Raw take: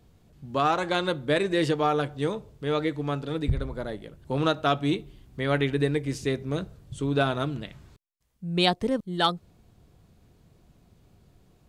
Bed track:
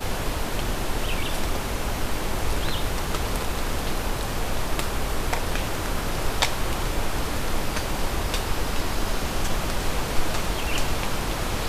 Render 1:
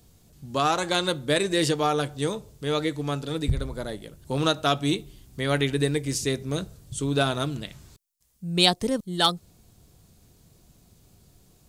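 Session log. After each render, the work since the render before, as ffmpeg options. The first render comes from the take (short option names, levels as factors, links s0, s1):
-af "bass=f=250:g=1,treble=f=4000:g=14"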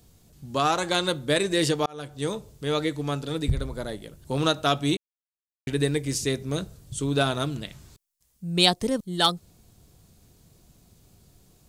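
-filter_complex "[0:a]asplit=4[s0][s1][s2][s3];[s0]atrim=end=1.86,asetpts=PTS-STARTPTS,afade=t=out:st=1.856:d=0.004:c=hsin[s4];[s1]atrim=start=1.86:end=4.97,asetpts=PTS-STARTPTS,afade=t=in:d=0.48,afade=t=out:st=3.106:d=0.004:c=hsin[s5];[s2]atrim=start=4.97:end=5.67,asetpts=PTS-STARTPTS,volume=0[s6];[s3]atrim=start=5.67,asetpts=PTS-STARTPTS,afade=t=in:d=0.004:c=hsin[s7];[s4][s5][s6][s7]concat=n=4:v=0:a=1"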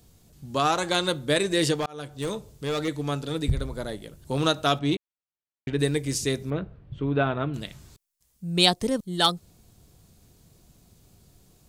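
-filter_complex "[0:a]asettb=1/sr,asplit=3[s0][s1][s2];[s0]atrim=end=1.804[s3];[s1]atrim=start=1.8:end=2.88,asetpts=PTS-STARTPTS,afade=t=in:d=0.004:c=qsin,afade=t=out:st=1.076:d=0.004:c=qsin,volume=15,asoftclip=hard,volume=0.0668[s4];[s2]atrim=start=2.876[s5];[s3][s4]acrossfade=d=0.004:c1=hsin:c2=qsin[s6];[s6][s5]acrossfade=d=0.004:c1=qsin:c2=hsin,asettb=1/sr,asplit=3[s7][s8][s9];[s7]atrim=end=4.794[s10];[s8]atrim=start=4.79:end=5.79,asetpts=PTS-STARTPTS,afade=t=in:d=0.004:c=qsin,afade=t=out:st=0.996:d=0.004:c=qsin,adynamicsmooth=sensitivity=1:basefreq=3800[s11];[s9]atrim=start=5.786[s12];[s10][s11]acrossfade=d=0.004:c1=hsin:c2=qsin[s13];[s13][s12]acrossfade=d=0.004:c1=qsin:c2=hsin,asettb=1/sr,asplit=3[s14][s15][s16];[s14]atrim=end=6.504[s17];[s15]atrim=start=6.5:end=7.54,asetpts=PTS-STARTPTS,afade=t=in:d=0.004:c=qsin,afade=t=out:st=1.036:d=0.004:c=qsin,lowpass=f=2500:w=0.5412,lowpass=f=2500:w=1.3066[s18];[s16]atrim=start=7.536[s19];[s17][s18]acrossfade=d=0.004:c1=hsin:c2=qsin[s20];[s20][s19]acrossfade=d=0.004:c1=qsin:c2=hsin"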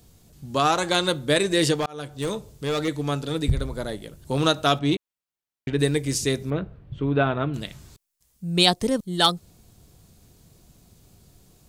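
-af "volume=1.33,alimiter=limit=0.708:level=0:latency=1"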